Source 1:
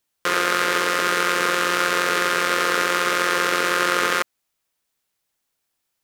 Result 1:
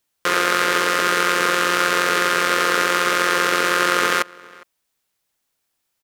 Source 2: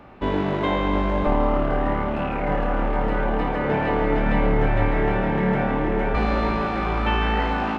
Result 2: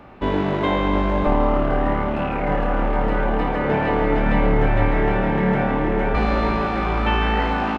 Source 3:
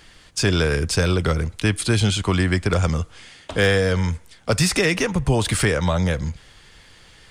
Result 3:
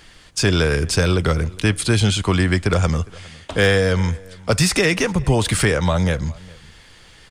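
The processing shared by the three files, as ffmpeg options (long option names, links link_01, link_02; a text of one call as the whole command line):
ffmpeg -i in.wav -filter_complex "[0:a]asplit=2[link_01][link_02];[link_02]adelay=408.2,volume=-23dB,highshelf=frequency=4000:gain=-9.18[link_03];[link_01][link_03]amix=inputs=2:normalize=0,volume=2dB" out.wav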